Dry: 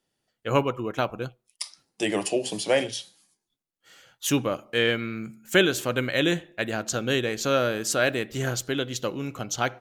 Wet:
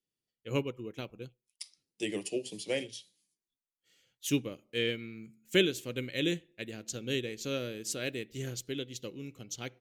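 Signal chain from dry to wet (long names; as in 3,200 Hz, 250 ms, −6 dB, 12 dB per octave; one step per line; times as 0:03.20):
flat-topped bell 1,000 Hz −12 dB
expander for the loud parts 1.5 to 1, over −37 dBFS
level −4 dB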